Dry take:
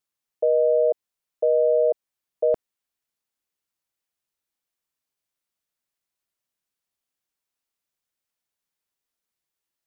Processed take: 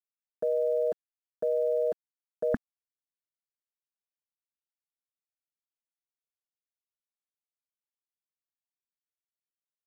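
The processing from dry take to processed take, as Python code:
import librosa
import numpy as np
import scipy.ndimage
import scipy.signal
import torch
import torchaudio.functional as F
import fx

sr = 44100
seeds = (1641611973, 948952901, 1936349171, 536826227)

y = fx.curve_eq(x, sr, hz=(100.0, 160.0, 240.0, 390.0, 570.0, 1200.0, 1700.0, 2500.0, 3900.0), db=(0, 2, 10, -11, -18, -3, 14, -25, -23))
y = np.where(np.abs(y) >= 10.0 ** (-57.0 / 20.0), y, 0.0)
y = y * librosa.db_to_amplitude(7.5)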